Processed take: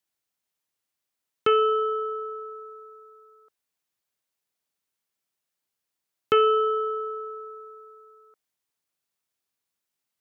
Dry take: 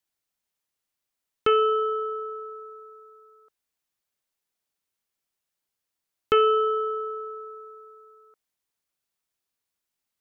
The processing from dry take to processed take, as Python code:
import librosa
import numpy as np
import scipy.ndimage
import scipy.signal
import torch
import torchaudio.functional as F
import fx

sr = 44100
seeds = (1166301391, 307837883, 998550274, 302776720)

y = scipy.signal.sosfilt(scipy.signal.butter(2, 76.0, 'highpass', fs=sr, output='sos'), x)